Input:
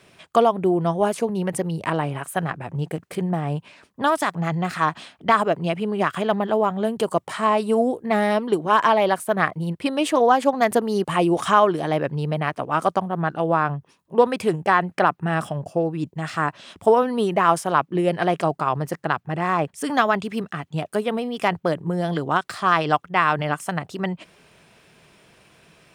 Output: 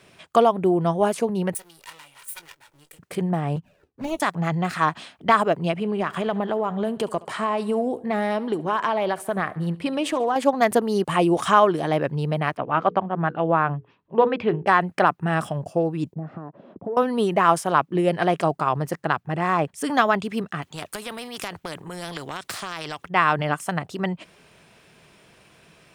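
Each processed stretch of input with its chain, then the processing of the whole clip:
1.54–2.99 minimum comb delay 2.1 ms + pre-emphasis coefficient 0.97 + doubler 20 ms -13 dB
3.56–4.2 median filter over 41 samples + envelope flanger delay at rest 3.2 ms, full sweep at -24.5 dBFS + doubler 12 ms -12 dB
5.71–10.36 high shelf 6200 Hz -5.5 dB + compressor 3:1, threshold -20 dBFS + feedback echo 71 ms, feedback 56%, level -20.5 dB
12.57–14.67 LPF 3300 Hz 24 dB/oct + notches 60/120/180/240/300/360/420/480 Hz
16.14–16.97 compressor, threshold -30 dBFS + sample leveller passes 2 + Butterworth band-pass 300 Hz, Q 0.67
20.62–23.08 compressor, threshold -21 dBFS + spectral compressor 2:1
whole clip: dry

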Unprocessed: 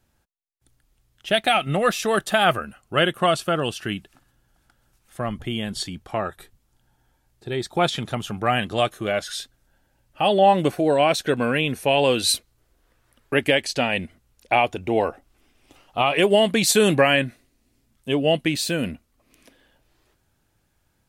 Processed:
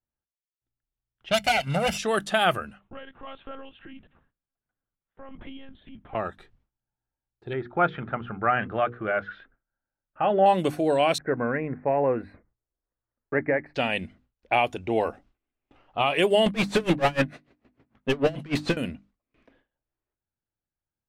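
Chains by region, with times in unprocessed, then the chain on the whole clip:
1.3–1.98 minimum comb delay 0.38 ms + HPF 70 Hz + comb 1.4 ms, depth 72%
2.79–6.15 compressor, threshold -31 dBFS + tremolo 1.5 Hz, depth 48% + monotone LPC vocoder at 8 kHz 270 Hz
7.53–10.46 LPF 2100 Hz 24 dB/oct + bell 1400 Hz +9.5 dB 0.37 oct + notches 60/120/180/240/300/360/420/480 Hz
11.18–13.75 elliptic low-pass 2000 Hz + mismatched tape noise reduction decoder only
16.46–18.77 bell 89 Hz +6 dB 1.9 oct + overdrive pedal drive 30 dB, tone 1100 Hz, clips at -5 dBFS + dB-linear tremolo 6.7 Hz, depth 28 dB
whole clip: low-pass opened by the level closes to 2000 Hz, open at -17 dBFS; notches 50/100/150/200/250/300 Hz; gate with hold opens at -48 dBFS; gain -3.5 dB

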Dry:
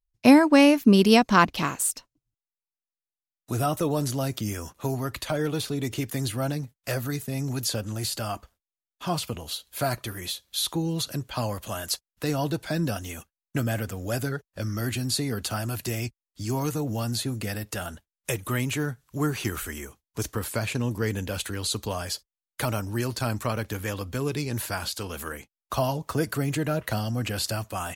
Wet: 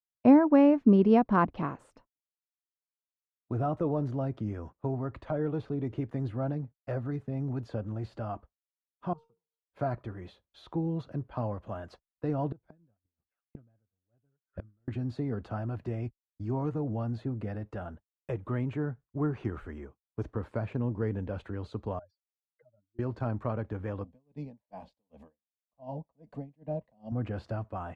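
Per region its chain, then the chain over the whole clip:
9.13–9.69 fixed phaser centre 410 Hz, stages 8 + resonator 460 Hz, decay 0.63 s, mix 90%
12.52–14.88 low shelf 190 Hz +8.5 dB + delay with a stepping band-pass 0.211 s, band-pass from 1500 Hz, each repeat 0.7 oct, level -10 dB + flipped gate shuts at -23 dBFS, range -26 dB
21.99–22.99 spectral contrast raised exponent 3.8 + HPF 390 Hz + compressor, threshold -42 dBFS
24.04–27.12 fixed phaser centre 370 Hz, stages 6 + dB-linear tremolo 2.6 Hz, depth 19 dB
whole clip: expander -36 dBFS; LPF 1000 Hz 12 dB/oct; gain -3.5 dB

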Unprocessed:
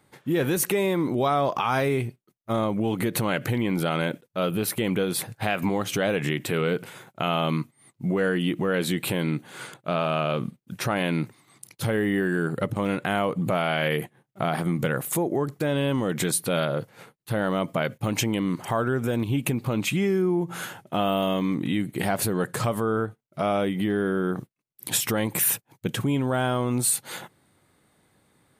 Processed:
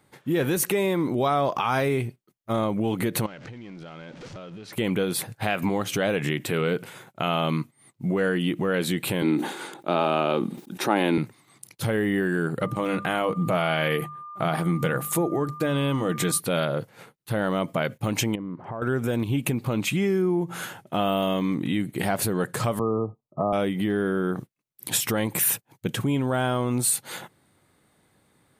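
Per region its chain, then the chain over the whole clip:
3.26–4.73 zero-crossing step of -32 dBFS + LPF 6200 Hz 24 dB/oct + compressor 8:1, threshold -38 dBFS
9.22–11.18 HPF 180 Hz 24 dB/oct + small resonant body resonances 340/830/3700 Hz, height 10 dB, ringing for 25 ms + sustainer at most 79 dB/s
12.6–16.38 notches 50/100/150/200/250 Hz + comb 6.3 ms, depth 30% + whine 1200 Hz -37 dBFS
18.35–18.82 LPF 1100 Hz + compressor 2.5:1, threshold -33 dBFS
22.79–23.53 brick-wall FIR low-pass 1300 Hz + three-band squash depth 40%
whole clip: dry

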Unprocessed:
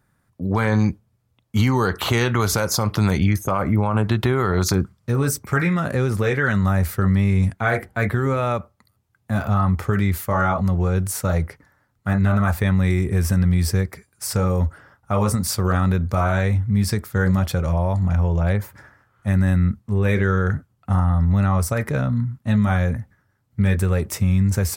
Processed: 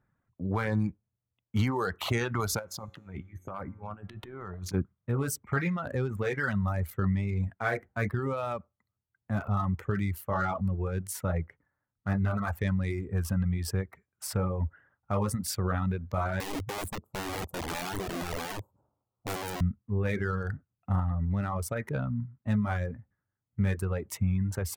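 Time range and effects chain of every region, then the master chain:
2.59–4.74 negative-ratio compressor -21 dBFS, ratio -0.5 + resonator 91 Hz, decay 1.4 s, mix 70%
16.4–19.61 inverse Chebyshev band-stop 1800–4600 Hz, stop band 50 dB + low shelf 110 Hz -5.5 dB + wrapped overs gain 19.5 dB
whole clip: Wiener smoothing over 9 samples; reverb removal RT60 1.1 s; gain -8 dB

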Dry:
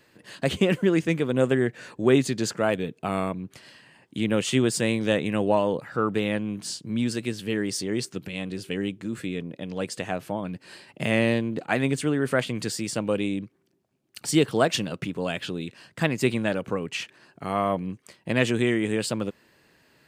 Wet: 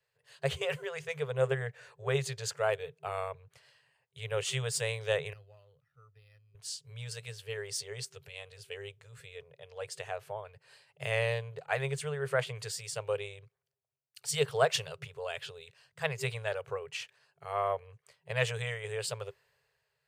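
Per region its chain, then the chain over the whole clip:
5.33–6.55 passive tone stack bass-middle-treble 6-0-2 + comb 1.6 ms, depth 68% + decimation joined by straight lines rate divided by 6×
whole clip: FFT band-reject 160–390 Hz; three-band expander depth 40%; gain -7 dB

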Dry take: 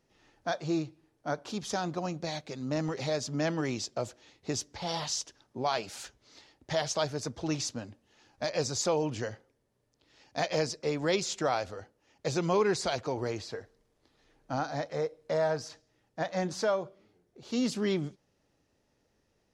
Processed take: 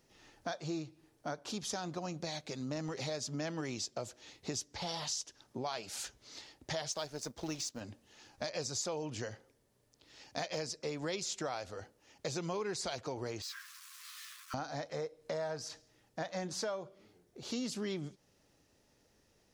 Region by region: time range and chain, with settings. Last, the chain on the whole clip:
6.92–7.81 G.711 law mismatch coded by A + bell 110 Hz -6.5 dB 0.76 oct
13.42–14.54 zero-crossing step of -44.5 dBFS + brick-wall FIR high-pass 1000 Hz + ensemble effect
whole clip: high shelf 3900 Hz +7 dB; compressor 3:1, threshold -41 dBFS; gain +2 dB

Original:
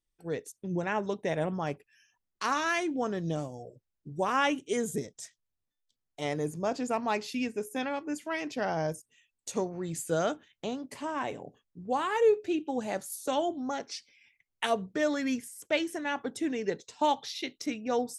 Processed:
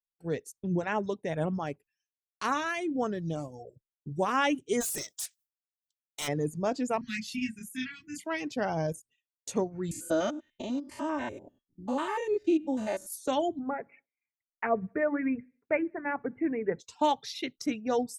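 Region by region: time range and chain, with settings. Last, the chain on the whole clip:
1.02–3.53 tremolo 2 Hz, depth 34% + dynamic EQ 5000 Hz, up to -6 dB, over -57 dBFS, Q 3.4
4.8–6.27 spectral limiter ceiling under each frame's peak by 17 dB + RIAA curve recording + hard clip -31 dBFS
7.01–8.24 Chebyshev band-stop 220–1800 Hz, order 3 + doubler 27 ms -2.5 dB
9.91–13.07 stepped spectrum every 0.1 s + comb 3.3 ms, depth 84%
13.59–16.79 steep low-pass 2400 Hz 96 dB/oct + notches 50/100/150/200/250/300/350 Hz + feedback echo 63 ms, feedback 60%, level -23.5 dB
whole clip: expander -52 dBFS; reverb removal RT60 0.75 s; low shelf 260 Hz +6.5 dB

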